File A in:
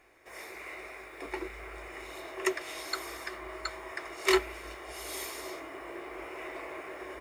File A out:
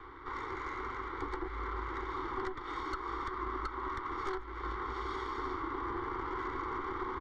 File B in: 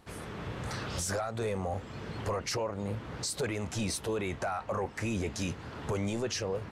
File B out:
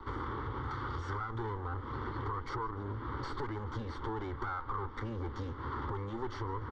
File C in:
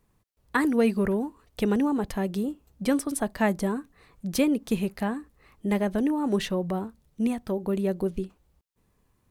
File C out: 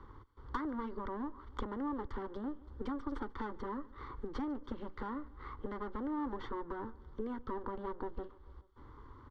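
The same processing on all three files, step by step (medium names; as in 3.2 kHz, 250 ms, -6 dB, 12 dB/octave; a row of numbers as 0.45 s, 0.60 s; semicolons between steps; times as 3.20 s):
comb filter that takes the minimum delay 0.88 ms; low-pass 3 kHz 24 dB/octave; in parallel at -2 dB: peak limiter -24.5 dBFS; on the sum: compression 16:1, threshold -37 dBFS; saturation -31 dBFS; static phaser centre 670 Hz, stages 6; on a send: feedback delay 145 ms, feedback 55%, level -24 dB; on the sum: three bands compressed up and down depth 40%; trim +7 dB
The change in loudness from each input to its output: -2.0 LU, -4.5 LU, -14.5 LU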